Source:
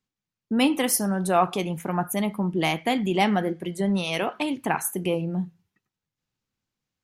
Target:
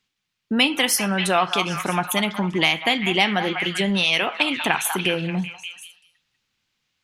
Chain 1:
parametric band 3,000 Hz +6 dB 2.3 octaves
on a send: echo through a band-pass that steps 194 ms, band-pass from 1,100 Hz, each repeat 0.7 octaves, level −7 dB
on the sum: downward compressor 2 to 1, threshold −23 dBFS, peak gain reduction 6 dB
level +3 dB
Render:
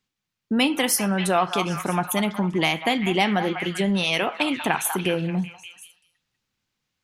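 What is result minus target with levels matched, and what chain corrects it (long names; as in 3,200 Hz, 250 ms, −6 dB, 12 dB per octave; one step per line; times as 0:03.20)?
4,000 Hz band −3.5 dB
parametric band 3,000 Hz +14 dB 2.3 octaves
on a send: echo through a band-pass that steps 194 ms, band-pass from 1,100 Hz, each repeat 0.7 octaves, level −7 dB
on the sum: downward compressor 2 to 1, threshold −23 dBFS, peak gain reduction 8 dB
level +3 dB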